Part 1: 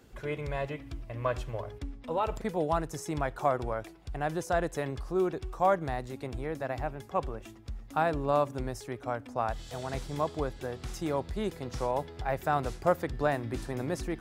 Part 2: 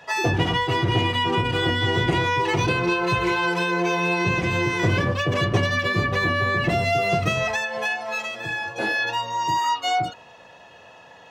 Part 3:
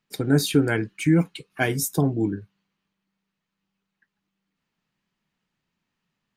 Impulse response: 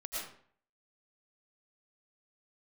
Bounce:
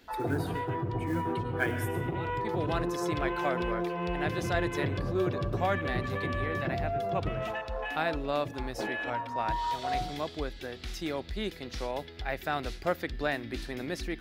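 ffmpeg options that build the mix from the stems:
-filter_complex "[0:a]equalizer=f=125:t=o:w=1:g=-11,equalizer=f=500:t=o:w=1:g=-4,equalizer=f=1k:t=o:w=1:g=-9,equalizer=f=2k:t=o:w=1:g=4,equalizer=f=4k:t=o:w=1:g=7,equalizer=f=8k:t=o:w=1:g=-8,volume=2dB[a];[1:a]lowpass=f=1.1k:p=1,afwtdn=0.0355,acompressor=threshold=-24dB:ratio=6,volume=-6dB,asplit=2[b][c];[c]volume=-13dB[d];[2:a]equalizer=f=160:t=o:w=0.67:g=-5,equalizer=f=400:t=o:w=0.67:g=4,equalizer=f=1.6k:t=o:w=0.67:g=9,equalizer=f=6.3k:t=o:w=0.67:g=-10,tremolo=f=0.68:d=0.91,acrusher=bits=6:mode=log:mix=0:aa=0.000001,volume=-12.5dB,asplit=3[e][f][g];[f]volume=-9dB[h];[g]apad=whole_len=626629[i];[a][i]sidechaincompress=threshold=-53dB:ratio=8:attack=5.3:release=550[j];[3:a]atrim=start_sample=2205[k];[d][h]amix=inputs=2:normalize=0[l];[l][k]afir=irnorm=-1:irlink=0[m];[j][b][e][m]amix=inputs=4:normalize=0"

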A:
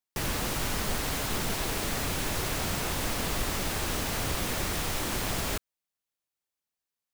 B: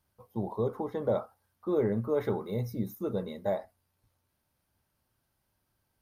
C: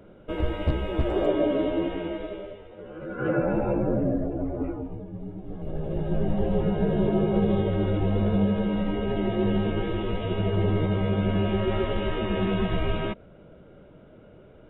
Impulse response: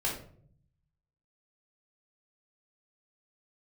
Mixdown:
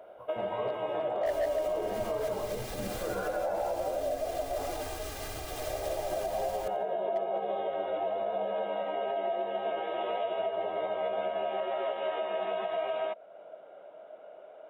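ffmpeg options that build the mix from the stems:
-filter_complex "[0:a]aecho=1:1:2.5:0.91,adelay=1100,volume=-8dB,asplit=2[a][b];[b]volume=-23.5dB[c];[1:a]equalizer=f=1k:t=o:w=1.6:g=14,volume=-9dB,asplit=2[d][e];[e]volume=-7.5dB[f];[2:a]highpass=f=670:t=q:w=5.8,asoftclip=type=hard:threshold=-12.5dB,volume=-2.5dB[g];[a][d]amix=inputs=2:normalize=0,alimiter=level_in=6dB:limit=-24dB:level=0:latency=1:release=120,volume=-6dB,volume=0dB[h];[3:a]atrim=start_sample=2205[i];[f][i]afir=irnorm=-1:irlink=0[j];[c]aecho=0:1:87|174|261|348|435|522:1|0.44|0.194|0.0852|0.0375|0.0165[k];[g][h][j][k]amix=inputs=4:normalize=0,alimiter=limit=-23.5dB:level=0:latency=1:release=346"

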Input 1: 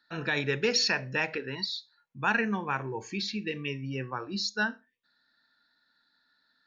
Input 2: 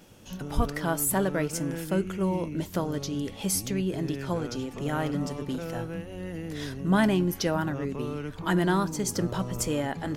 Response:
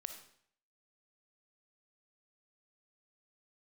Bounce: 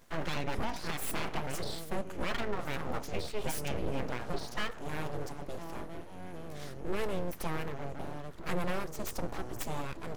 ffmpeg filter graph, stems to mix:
-filter_complex "[0:a]deesser=0.9,highshelf=f=3.2k:g=-9.5,volume=2.5dB,asplit=2[a][b];[b]volume=-9dB[c];[1:a]volume=-5dB[d];[2:a]atrim=start_sample=2205[e];[c][e]afir=irnorm=-1:irlink=0[f];[a][d][f]amix=inputs=3:normalize=0,equalizer=f=2.9k:w=0.92:g=-5.5,aeval=exprs='abs(val(0))':c=same,alimiter=limit=-21.5dB:level=0:latency=1:release=285"

